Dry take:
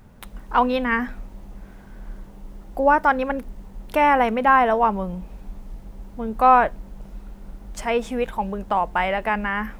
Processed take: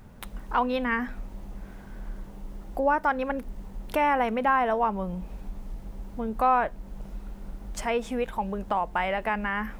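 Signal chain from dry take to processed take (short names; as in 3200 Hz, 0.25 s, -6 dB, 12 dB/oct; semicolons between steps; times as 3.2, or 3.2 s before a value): compressor 1.5:1, threshold -32 dBFS, peak gain reduction 8.5 dB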